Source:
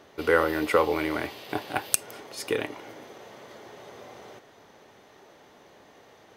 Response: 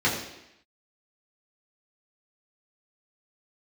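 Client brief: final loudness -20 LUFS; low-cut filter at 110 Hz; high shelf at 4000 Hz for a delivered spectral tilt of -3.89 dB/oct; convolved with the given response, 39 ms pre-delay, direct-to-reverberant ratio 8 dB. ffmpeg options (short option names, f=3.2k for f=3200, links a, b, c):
-filter_complex "[0:a]highpass=110,highshelf=f=4k:g=-7,asplit=2[a][b];[1:a]atrim=start_sample=2205,adelay=39[c];[b][c]afir=irnorm=-1:irlink=0,volume=-22.5dB[d];[a][d]amix=inputs=2:normalize=0,volume=7.5dB"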